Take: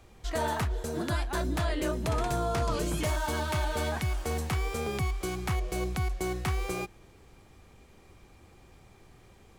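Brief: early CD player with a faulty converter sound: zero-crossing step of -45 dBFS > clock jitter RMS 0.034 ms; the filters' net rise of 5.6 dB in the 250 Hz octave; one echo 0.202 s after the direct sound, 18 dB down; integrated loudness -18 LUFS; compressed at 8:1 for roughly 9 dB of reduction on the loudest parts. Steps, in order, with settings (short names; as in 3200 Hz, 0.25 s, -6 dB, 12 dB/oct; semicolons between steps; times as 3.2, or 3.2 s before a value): bell 250 Hz +8 dB; compressor 8:1, threshold -33 dBFS; echo 0.202 s -18 dB; zero-crossing step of -45 dBFS; clock jitter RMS 0.034 ms; gain +18.5 dB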